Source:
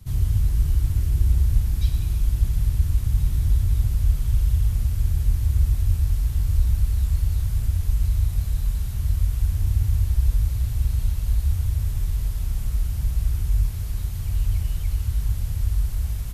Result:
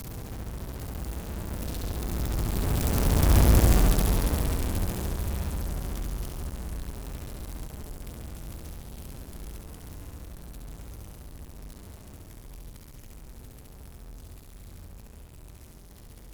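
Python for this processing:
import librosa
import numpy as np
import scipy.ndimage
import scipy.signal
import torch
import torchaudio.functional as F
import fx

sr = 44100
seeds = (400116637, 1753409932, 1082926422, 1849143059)

y = np.sign(x) * np.sqrt(np.mean(np.square(x)))
y = fx.doppler_pass(y, sr, speed_mps=27, closest_m=11.0, pass_at_s=3.5)
y = fx.room_flutter(y, sr, wall_m=11.8, rt60_s=1.1)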